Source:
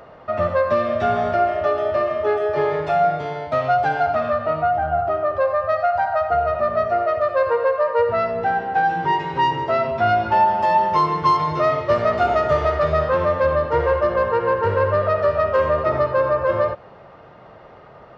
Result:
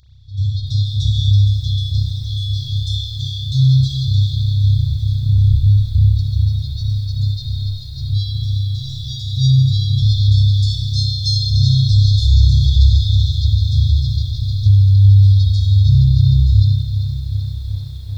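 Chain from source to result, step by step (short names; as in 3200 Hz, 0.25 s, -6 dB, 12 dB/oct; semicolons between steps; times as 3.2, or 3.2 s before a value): FFT band-reject 130–3300 Hz; 5.23–6.19 tone controls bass +14 dB, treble -14 dB; AGC gain up to 11.5 dB; on a send: thin delay 0.43 s, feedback 41%, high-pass 1500 Hz, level -21.5 dB; on the sum: spring tank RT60 1.3 s, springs 30 ms, chirp 70 ms, DRR -7.5 dB; maximiser +9 dB; lo-fi delay 0.385 s, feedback 80%, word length 7-bit, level -12 dB; gain -4.5 dB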